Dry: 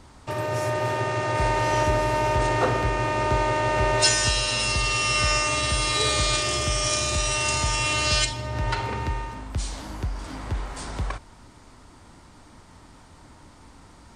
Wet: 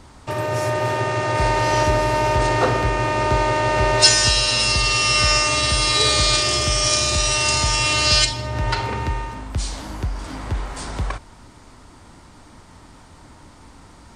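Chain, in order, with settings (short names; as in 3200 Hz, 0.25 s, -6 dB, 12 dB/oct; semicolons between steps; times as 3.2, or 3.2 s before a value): dynamic EQ 4700 Hz, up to +6 dB, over -42 dBFS, Q 2.5; gain +4 dB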